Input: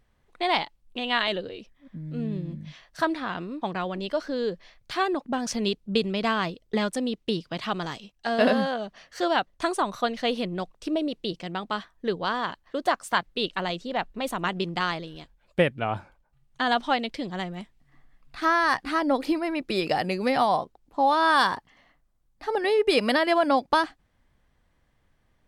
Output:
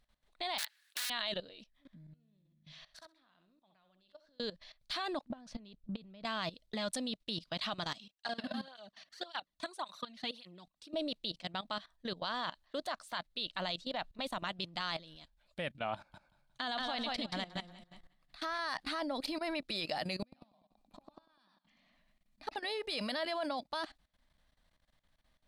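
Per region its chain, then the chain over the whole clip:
0.58–1.10 s: integer overflow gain 27.5 dB + resonant high-pass 1.7 kHz, resonance Q 11 + spectrum-flattening compressor 2:1
1.97–4.40 s: inverted gate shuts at -31 dBFS, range -26 dB + flutter echo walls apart 11.2 m, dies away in 0.37 s
5.31–6.25 s: low-pass 1.5 kHz 6 dB/octave + bass shelf 160 Hz +8 dB + compression, threshold -30 dBFS
7.94–10.94 s: peaking EQ 620 Hz -4.5 dB 0.55 oct + compression 12:1, threshold -26 dBFS + cancelling through-zero flanger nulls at 1.8 Hz, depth 2.5 ms
15.96–18.59 s: compression 2:1, threshold -27 dBFS + feedback delay 178 ms, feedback 28%, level -4.5 dB
20.22–22.56 s: small resonant body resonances 210/2400 Hz, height 17 dB, ringing for 60 ms + inverted gate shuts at -17 dBFS, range -41 dB + modulated delay 98 ms, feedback 49%, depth 124 cents, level -8 dB
whole clip: fifteen-band graphic EQ 100 Hz -10 dB, 400 Hz -9 dB, 4 kHz +10 dB, 10 kHz +4 dB; level held to a coarse grid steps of 17 dB; peaking EQ 620 Hz +6.5 dB 0.21 oct; trim -3.5 dB

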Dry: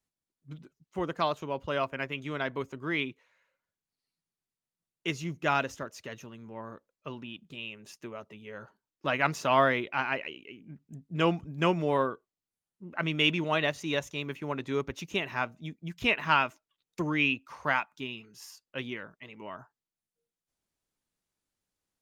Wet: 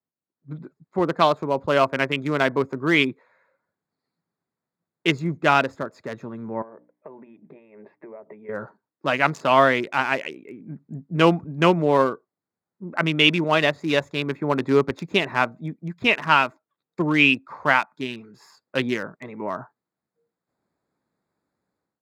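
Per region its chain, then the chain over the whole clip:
6.62–8.49 s: hum notches 60/120/180/240/300 Hz + compression 8:1, threshold -52 dBFS + cabinet simulation 220–2300 Hz, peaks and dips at 260 Hz -4 dB, 410 Hz +4 dB, 630 Hz +5 dB, 920 Hz +3 dB, 1.3 kHz -9 dB, 2.1 kHz +6 dB
whole clip: local Wiener filter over 15 samples; high-pass 130 Hz; level rider gain up to 15.5 dB; trim -1 dB

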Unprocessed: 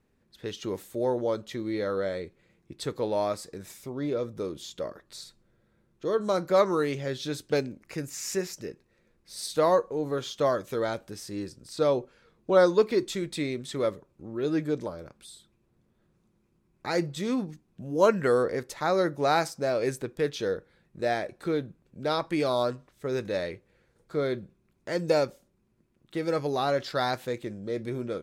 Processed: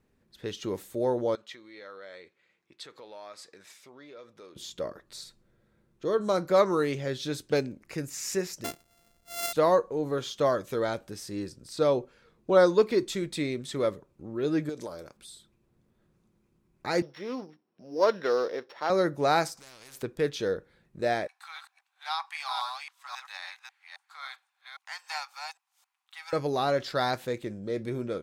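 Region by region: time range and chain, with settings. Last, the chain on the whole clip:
1.35–4.56 s: compression 4:1, threshold -35 dBFS + band-pass filter 2.4 kHz, Q 0.62
8.64–9.53 s: sorted samples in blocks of 64 samples + treble shelf 3.7 kHz +10.5 dB
14.69–15.17 s: tone controls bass -7 dB, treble +9 dB + compression, threshold -32 dBFS
17.02–18.90 s: sorted samples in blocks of 8 samples + high-pass 410 Hz + distance through air 250 m
19.57–20.03 s: compression 4:1, threshold -38 dBFS + spectrum-flattening compressor 4:1
21.27–26.33 s: chunks repeated in reverse 269 ms, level -3.5 dB + rippled Chebyshev high-pass 760 Hz, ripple 3 dB
whole clip: none

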